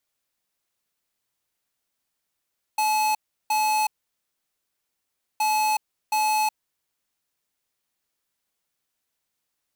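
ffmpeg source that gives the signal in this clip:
-f lavfi -i "aevalsrc='0.0794*(2*lt(mod(859*t,1),0.5)-1)*clip(min(mod(mod(t,2.62),0.72),0.37-mod(mod(t,2.62),0.72))/0.005,0,1)*lt(mod(t,2.62),1.44)':d=5.24:s=44100"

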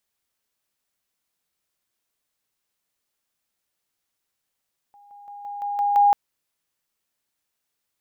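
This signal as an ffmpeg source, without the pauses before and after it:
-f lavfi -i "aevalsrc='pow(10,(-48.5+6*floor(t/0.17))/20)*sin(2*PI*815*t)':d=1.19:s=44100"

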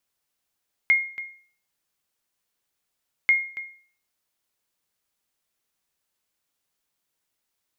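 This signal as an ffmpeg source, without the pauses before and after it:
-f lavfi -i "aevalsrc='0.266*(sin(2*PI*2140*mod(t,2.39))*exp(-6.91*mod(t,2.39)/0.46)+0.168*sin(2*PI*2140*max(mod(t,2.39)-0.28,0))*exp(-6.91*max(mod(t,2.39)-0.28,0)/0.46))':d=4.78:s=44100"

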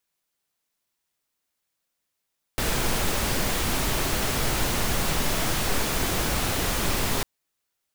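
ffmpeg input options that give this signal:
-f lavfi -i "anoisesrc=c=pink:a=0.305:d=4.65:r=44100:seed=1"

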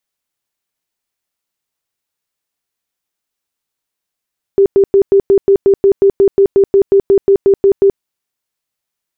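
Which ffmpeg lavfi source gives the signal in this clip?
-f lavfi -i "aevalsrc='0.596*sin(2*PI*394*mod(t,0.18))*lt(mod(t,0.18),31/394)':d=3.42:s=44100"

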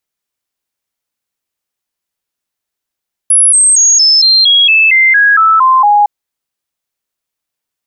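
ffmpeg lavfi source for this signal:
-f lavfi -i "aevalsrc='0.631*clip(min(mod(t,0.23),0.23-mod(t,0.23))/0.005,0,1)*sin(2*PI*10500*pow(2,-floor(t/0.23)/3)*mod(t,0.23))':d=2.76:s=44100"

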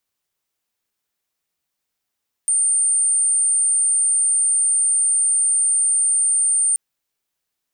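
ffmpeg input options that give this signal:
-f lavfi -i "aevalsrc='0.188*sin(2*PI*8930*t)':d=4.28:s=44100"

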